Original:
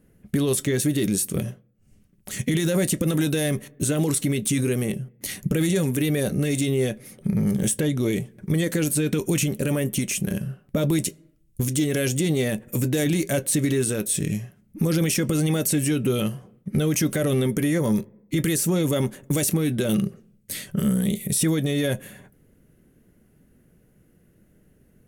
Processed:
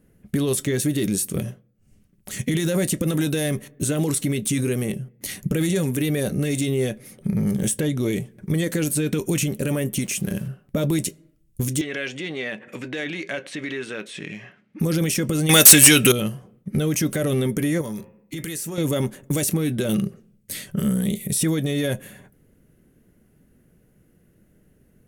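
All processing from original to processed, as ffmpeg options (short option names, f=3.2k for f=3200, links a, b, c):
-filter_complex "[0:a]asettb=1/sr,asplit=3[a][b][c];[a]atrim=end=10.044[d];[b]atrim=start=10.04:end=10.48,asetpts=PTS-STARTPTS,afade=t=in:d=0.004:c=qsin,afade=t=out:st=0.436:d=0.004:c=qsin,highpass=48,aeval=exprs='val(0)*gte(abs(val(0)),0.00668)':c=same[e];[c]atrim=start=10.476[f];[d][e]acrossfade=d=0.004:c1=hsin:c2=qsin[g];[g][f]acrossfade=d=0.004:c1=qsin:c2=hsin,asettb=1/sr,asplit=3[h][i][j];[h]atrim=end=11.814[k];[i]atrim=start=11.81:end=14.8,asetpts=PTS-STARTPTS,afade=t=in:d=0.004:c=qsin,afade=t=out:st=2.986:d=0.004:c=qsin,equalizer=f=2k:w=0.47:g=13.5,acompressor=threshold=-32dB:ratio=2:attack=3.2:release=140:knee=1:detection=peak,highpass=210,lowpass=3.9k[l];[j]atrim=start=14.796[m];[k][l]acrossfade=d=0.004:c1=hsin:c2=qsin[n];[n][m]acrossfade=d=0.004:c1=qsin:c2=hsin,asettb=1/sr,asplit=3[o][p][q];[o]atrim=end=15.494[r];[p]atrim=start=15.49:end=16.12,asetpts=PTS-STARTPTS,afade=t=in:d=0.004:c=qsin,afade=t=out:st=0.626:d=0.004:c=qsin,tiltshelf=f=930:g=-9.5,aeval=exprs='0.75*sin(PI/2*2.82*val(0)/0.75)':c=same[s];[q]atrim=start=16.116[t];[r][s]acrossfade=d=0.004:c1=hsin:c2=qsin[u];[u][t]acrossfade=d=0.004:c1=qsin:c2=hsin,asettb=1/sr,asplit=3[v][w][x];[v]atrim=end=17.814[y];[w]atrim=start=17.81:end=18.78,asetpts=PTS-STARTPTS,afade=t=in:d=0.004:c=qsin,afade=t=out:st=0.966:d=0.004:c=qsin,tiltshelf=f=760:g=-3,bandreject=f=88.57:t=h:w=4,bandreject=f=177.14:t=h:w=4,bandreject=f=265.71:t=h:w=4,bandreject=f=354.28:t=h:w=4,bandreject=f=442.85:t=h:w=4,bandreject=f=531.42:t=h:w=4,bandreject=f=619.99:t=h:w=4,bandreject=f=708.56:t=h:w=4,bandreject=f=797.13:t=h:w=4,bandreject=f=885.7:t=h:w=4,bandreject=f=974.27:t=h:w=4,bandreject=f=1.06284k:t=h:w=4,bandreject=f=1.15141k:t=h:w=4,bandreject=f=1.23998k:t=h:w=4,bandreject=f=1.32855k:t=h:w=4,bandreject=f=1.41712k:t=h:w=4,bandreject=f=1.50569k:t=h:w=4,bandreject=f=1.59426k:t=h:w=4,bandreject=f=1.68283k:t=h:w=4,bandreject=f=1.7714k:t=h:w=4,bandreject=f=1.85997k:t=h:w=4,bandreject=f=1.94854k:t=h:w=4,bandreject=f=2.03711k:t=h:w=4,bandreject=f=2.12568k:t=h:w=4,bandreject=f=2.21425k:t=h:w=4,bandreject=f=2.30282k:t=h:w=4,bandreject=f=2.39139k:t=h:w=4,bandreject=f=2.47996k:t=h:w=4,bandreject=f=2.56853k:t=h:w=4,bandreject=f=2.6571k:t=h:w=4,bandreject=f=2.74567k:t=h:w=4,bandreject=f=2.83424k:t=h:w=4,bandreject=f=2.92281k:t=h:w=4,acompressor=threshold=-29dB:ratio=3:attack=3.2:release=140:knee=1:detection=peak[z];[x]atrim=start=18.776[aa];[y][z]acrossfade=d=0.004:c1=hsin:c2=qsin[ab];[ab][aa]acrossfade=d=0.004:c1=qsin:c2=hsin"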